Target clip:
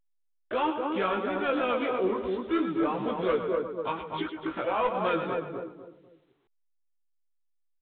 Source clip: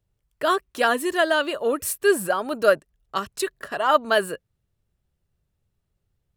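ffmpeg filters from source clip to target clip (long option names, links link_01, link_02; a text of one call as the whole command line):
ffmpeg -i in.wav -filter_complex "[0:a]asplit=2[link_01][link_02];[link_02]asetrate=55563,aresample=44100,atempo=0.793701,volume=-11dB[link_03];[link_01][link_03]amix=inputs=2:normalize=0,agate=range=-33dB:threshold=-38dB:ratio=3:detection=peak,acrusher=bits=6:mix=0:aa=0.000001,asplit=2[link_04][link_05];[link_05]aecho=0:1:90:0.251[link_06];[link_04][link_06]amix=inputs=2:normalize=0,asetrate=35897,aresample=44100,asplit=2[link_07][link_08];[link_08]adelay=247,lowpass=frequency=860:poles=1,volume=-3.5dB,asplit=2[link_09][link_10];[link_10]adelay=247,lowpass=frequency=860:poles=1,volume=0.34,asplit=2[link_11][link_12];[link_12]adelay=247,lowpass=frequency=860:poles=1,volume=0.34,asplit=2[link_13][link_14];[link_14]adelay=247,lowpass=frequency=860:poles=1,volume=0.34[link_15];[link_09][link_11][link_13][link_15]amix=inputs=4:normalize=0[link_16];[link_07][link_16]amix=inputs=2:normalize=0,asoftclip=type=tanh:threshold=-14dB,alimiter=limit=-18dB:level=0:latency=1:release=187,flanger=delay=15.5:depth=2.8:speed=3" -ar 8000 -c:a pcm_alaw out.wav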